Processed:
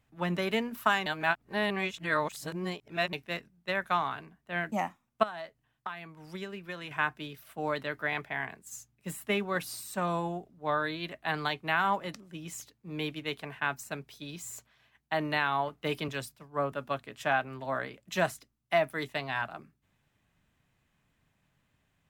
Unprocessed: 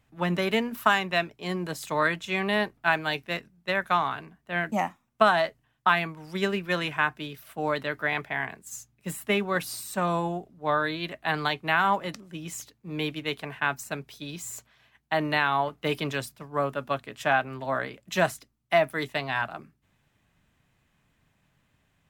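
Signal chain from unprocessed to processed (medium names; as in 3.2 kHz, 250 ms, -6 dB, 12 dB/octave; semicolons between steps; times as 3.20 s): 1.06–3.13 s: reverse; 5.23–6.91 s: compression 5:1, threshold -33 dBFS, peak gain reduction 15.5 dB; 16.08–16.72 s: three bands expanded up and down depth 40%; trim -4.5 dB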